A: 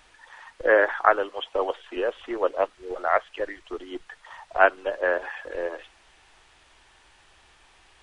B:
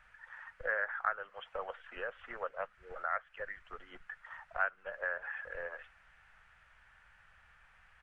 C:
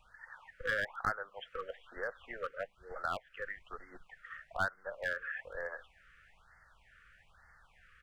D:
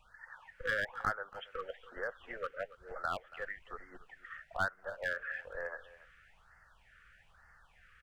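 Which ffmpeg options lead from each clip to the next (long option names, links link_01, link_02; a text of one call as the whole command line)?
ffmpeg -i in.wav -af "firequalizer=gain_entry='entry(190,0);entry(310,-24);entry(500,-7);entry(1000,-6);entry(1400,6);entry(3700,-15)':delay=0.05:min_phase=1,acompressor=threshold=-33dB:ratio=2,volume=-5dB" out.wav
ffmpeg -i in.wav -af "aeval=exprs='clip(val(0),-1,0.0282)':channel_layout=same,afftfilt=real='re*(1-between(b*sr/1024,770*pow(3100/770,0.5+0.5*sin(2*PI*1.1*pts/sr))/1.41,770*pow(3100/770,0.5+0.5*sin(2*PI*1.1*pts/sr))*1.41))':imag='im*(1-between(b*sr/1024,770*pow(3100/770,0.5+0.5*sin(2*PI*1.1*pts/sr))/1.41,770*pow(3100/770,0.5+0.5*sin(2*PI*1.1*pts/sr))*1.41))':win_size=1024:overlap=0.75,volume=1.5dB" out.wav
ffmpeg -i in.wav -af "aecho=1:1:281:0.126" out.wav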